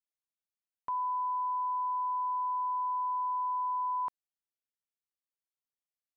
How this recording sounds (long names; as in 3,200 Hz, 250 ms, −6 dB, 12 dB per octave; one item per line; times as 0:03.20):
background noise floor −96 dBFS
spectral slope −2.5 dB per octave